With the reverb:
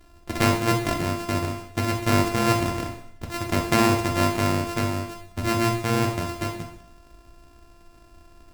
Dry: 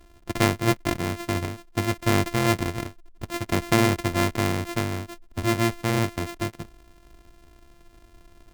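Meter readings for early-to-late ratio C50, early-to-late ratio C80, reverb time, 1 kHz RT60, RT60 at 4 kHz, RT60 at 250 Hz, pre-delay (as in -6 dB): 7.0 dB, 9.5 dB, 0.70 s, 0.70 s, 0.70 s, 0.70 s, 6 ms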